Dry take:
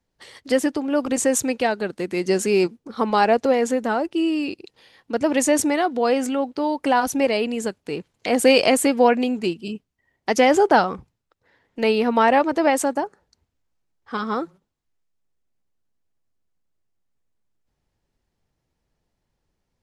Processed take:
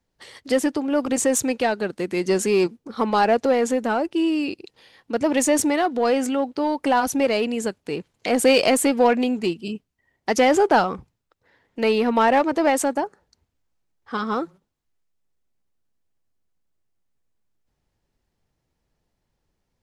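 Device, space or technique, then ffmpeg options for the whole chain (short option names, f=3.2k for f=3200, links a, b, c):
parallel distortion: -filter_complex "[0:a]asplit=2[a][b];[b]asoftclip=type=hard:threshold=-18.5dB,volume=-6dB[c];[a][c]amix=inputs=2:normalize=0,volume=-3dB"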